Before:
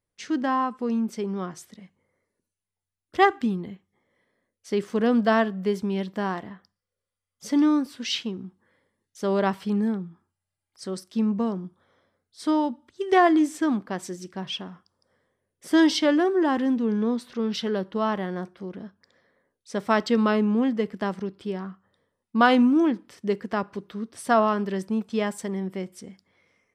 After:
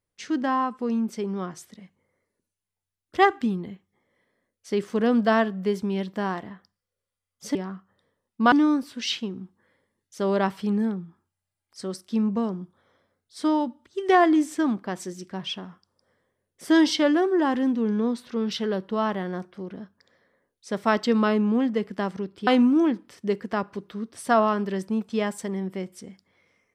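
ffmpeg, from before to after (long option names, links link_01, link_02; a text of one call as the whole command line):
ffmpeg -i in.wav -filter_complex "[0:a]asplit=4[link_01][link_02][link_03][link_04];[link_01]atrim=end=7.552[link_05];[link_02]atrim=start=21.498:end=22.472[link_06];[link_03]atrim=start=7.548:end=21.502[link_07];[link_04]atrim=start=22.468[link_08];[link_05][link_06]acrossfade=duration=0.004:curve1=hsin:curve2=hsin[link_09];[link_09][link_07]acrossfade=duration=0.004:curve1=hsin:curve2=hsin[link_10];[link_10][link_08]acrossfade=duration=0.004:curve1=hsin:curve2=hsin" out.wav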